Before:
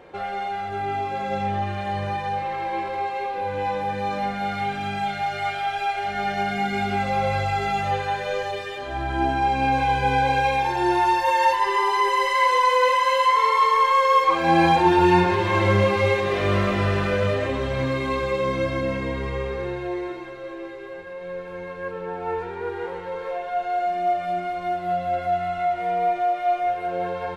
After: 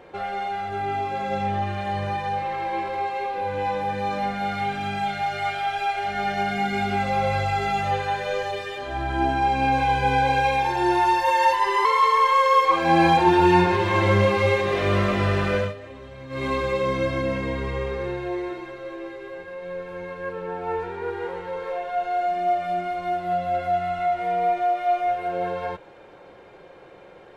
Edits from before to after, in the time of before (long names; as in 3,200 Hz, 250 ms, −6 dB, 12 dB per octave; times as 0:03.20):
0:11.85–0:13.44: remove
0:17.17–0:18.04: duck −15.5 dB, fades 0.16 s